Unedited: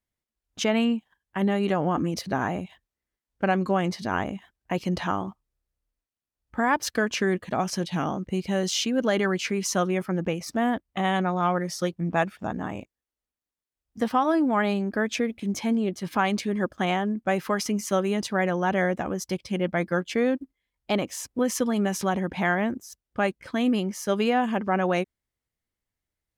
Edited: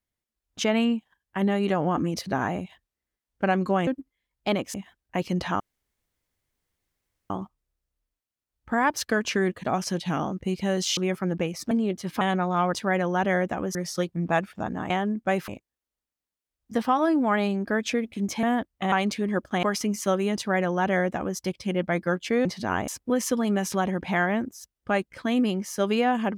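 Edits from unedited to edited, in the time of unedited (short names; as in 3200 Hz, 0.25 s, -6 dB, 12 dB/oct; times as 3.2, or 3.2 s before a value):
3.87–4.3 swap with 20.3–21.17
5.16 insert room tone 1.70 s
8.83–9.84 cut
10.58–11.07 swap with 15.69–16.19
16.9–17.48 move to 12.74
18.21–19.23 copy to 11.59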